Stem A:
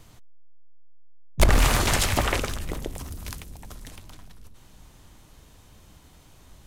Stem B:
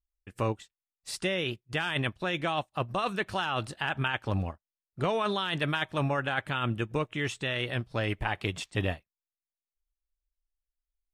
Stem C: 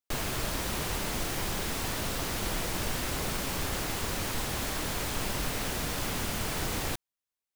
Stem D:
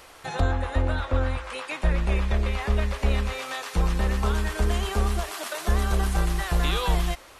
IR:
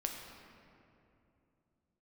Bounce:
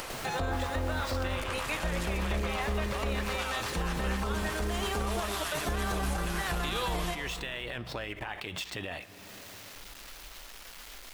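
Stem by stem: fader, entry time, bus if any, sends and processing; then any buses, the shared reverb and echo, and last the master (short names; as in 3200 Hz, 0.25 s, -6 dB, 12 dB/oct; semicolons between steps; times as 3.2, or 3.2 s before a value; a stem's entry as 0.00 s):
-7.0 dB, 0.00 s, bus A, no send, dry
-6.0 dB, 0.00 s, bus A, send -18.5 dB, median filter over 5 samples; low shelf 380 Hz -10 dB; fast leveller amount 70%
-10.5 dB, 0.00 s, bus A, no send, slew limiter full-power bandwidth 110 Hz
-3.5 dB, 0.00 s, no bus, send -8 dB, dry
bus A: 0.0 dB, limiter -29 dBFS, peak gain reduction 15.5 dB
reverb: on, RT60 2.8 s, pre-delay 7 ms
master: low shelf 78 Hz -9.5 dB; upward compressor, threshold -31 dBFS; limiter -22.5 dBFS, peak gain reduction 7.5 dB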